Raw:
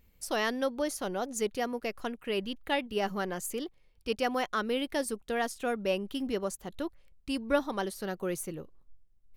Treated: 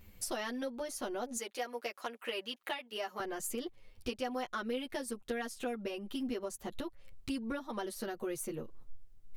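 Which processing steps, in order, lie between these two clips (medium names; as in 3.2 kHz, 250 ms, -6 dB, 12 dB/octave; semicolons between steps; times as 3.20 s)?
1.37–3.20 s: high-pass 540 Hz 12 dB/octave; compression 6:1, threshold -44 dBFS, peak gain reduction 21 dB; touch-sensitive flanger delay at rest 10.2 ms, full sweep at -18 dBFS; trim +11 dB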